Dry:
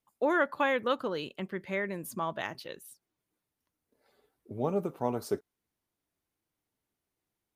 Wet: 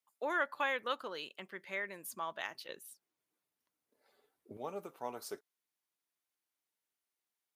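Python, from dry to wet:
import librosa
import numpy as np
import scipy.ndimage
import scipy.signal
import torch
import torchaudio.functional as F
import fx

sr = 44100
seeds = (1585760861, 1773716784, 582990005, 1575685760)

y = fx.highpass(x, sr, hz=fx.steps((0.0, 1200.0), (2.69, 390.0), (4.57, 1400.0)), slope=6)
y = y * librosa.db_to_amplitude(-2.0)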